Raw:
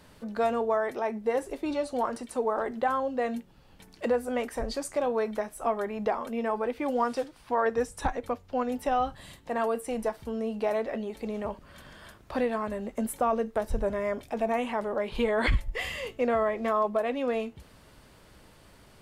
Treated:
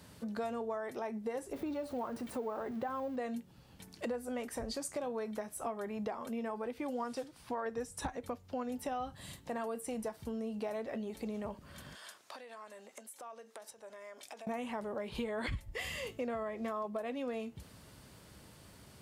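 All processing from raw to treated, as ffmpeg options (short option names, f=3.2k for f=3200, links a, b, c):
-filter_complex "[0:a]asettb=1/sr,asplit=3[a][b][c];[a]atrim=end=1.534[d];[b]atrim=start=1.53:end=3.16,asetpts=PTS-STARTPTS,afade=t=in:d=0.004:c=qsin,afade=t=out:st=1.626:d=0.004:c=qsin,aeval=exprs='val(0)+0.5*0.0106*sgn(val(0))':c=same,equalizer=f=8.1k:t=o:w=2.3:g=-13[e];[c]atrim=start=3.156[f];[d][e]acrossfade=d=0.004:c1=hsin:c2=qsin[g];[g][f]acrossfade=d=0.004:c1=qsin:c2=hsin,asettb=1/sr,asplit=3[h][i][j];[h]atrim=end=11.954[k];[i]atrim=start=11.95:end=14.47,asetpts=PTS-STARTPTS,afade=t=in:d=0.004:c=qsin,afade=t=out:st=2.516:d=0.004:c=qsin,aemphasis=mode=production:type=50fm,acompressor=threshold=-38dB:ratio=12:attack=3.2:release=140:knee=1:detection=peak,highpass=610,lowpass=6.6k[l];[j]atrim=start=14.466[m];[k][l]acrossfade=d=0.004:c1=hsin:c2=qsin[n];[n][m]acrossfade=d=0.004:c1=qsin:c2=hsin,highpass=76,bass=f=250:g=6,treble=f=4k:g=6,acompressor=threshold=-34dB:ratio=3,volume=-3.5dB"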